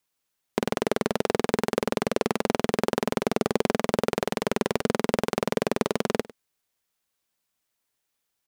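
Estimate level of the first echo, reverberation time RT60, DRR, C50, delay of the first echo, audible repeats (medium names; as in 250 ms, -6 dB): -20.0 dB, no reverb, no reverb, no reverb, 101 ms, 1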